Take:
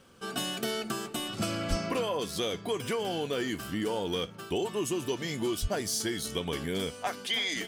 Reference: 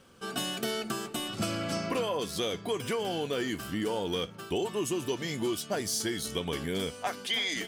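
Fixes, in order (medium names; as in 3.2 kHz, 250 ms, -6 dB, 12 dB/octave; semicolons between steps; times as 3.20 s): 1.69–1.81 s: high-pass 140 Hz 24 dB/octave; 5.61–5.73 s: high-pass 140 Hz 24 dB/octave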